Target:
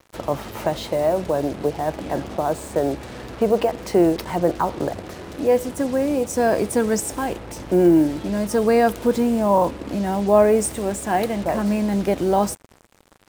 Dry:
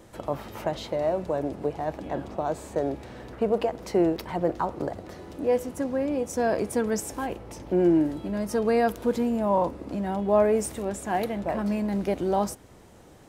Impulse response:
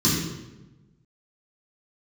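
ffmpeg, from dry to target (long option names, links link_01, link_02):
-af "acrusher=bits=6:mix=0:aa=0.5,adynamicequalizer=threshold=0.00141:dfrequency=8500:dqfactor=5.9:tfrequency=8500:tqfactor=5.9:attack=5:release=100:ratio=0.375:range=2.5:mode=boostabove:tftype=bell,volume=6dB"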